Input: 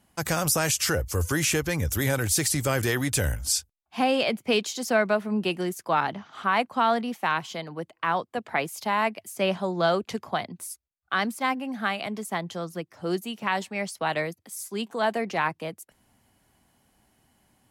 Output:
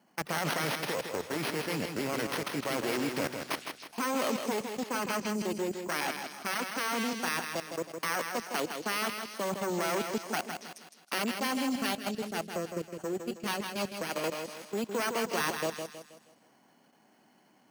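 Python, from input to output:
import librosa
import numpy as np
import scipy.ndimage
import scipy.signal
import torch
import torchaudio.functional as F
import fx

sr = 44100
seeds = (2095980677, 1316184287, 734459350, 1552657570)

y = fx.self_delay(x, sr, depth_ms=0.77)
y = scipy.signal.sosfilt(scipy.signal.butter(4, 180.0, 'highpass', fs=sr, output='sos'), y)
y = fx.peak_eq(y, sr, hz=4100.0, db=-4.5, octaves=2.8)
y = np.repeat(scipy.signal.resample_poly(y, 1, 6), 6)[:len(y)]
y = fx.low_shelf(y, sr, hz=290.0, db=-3.0)
y = fx.echo_stepped(y, sr, ms=140, hz=3100.0, octaves=0.7, feedback_pct=70, wet_db=-6.0)
y = fx.level_steps(y, sr, step_db=18)
y = fx.echo_feedback(y, sr, ms=160, feedback_pct=39, wet_db=-6.5)
y = fx.rider(y, sr, range_db=10, speed_s=2.0)
y = fx.rotary(y, sr, hz=6.3, at=(11.96, 14.24))
y = y * librosa.db_to_amplitude(4.0)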